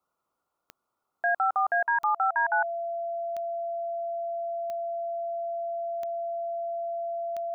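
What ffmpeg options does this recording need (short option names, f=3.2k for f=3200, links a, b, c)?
-af "adeclick=t=4,bandreject=f=680:w=30,agate=range=-21dB:threshold=-74dB"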